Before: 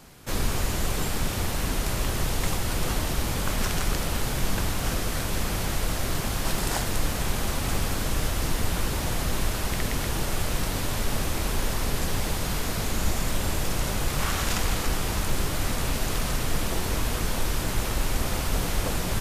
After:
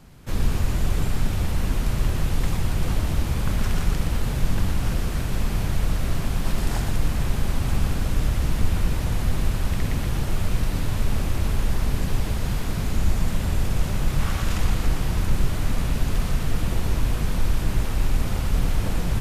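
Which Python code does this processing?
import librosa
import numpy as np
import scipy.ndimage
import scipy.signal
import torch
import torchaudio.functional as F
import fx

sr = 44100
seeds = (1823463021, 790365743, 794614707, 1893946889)

y = fx.rattle_buzz(x, sr, strikes_db=-32.0, level_db=-34.0)
y = fx.bass_treble(y, sr, bass_db=9, treble_db=-4)
y = y + 10.0 ** (-6.0 / 20.0) * np.pad(y, (int(119 * sr / 1000.0), 0))[:len(y)]
y = y * 10.0 ** (-4.0 / 20.0)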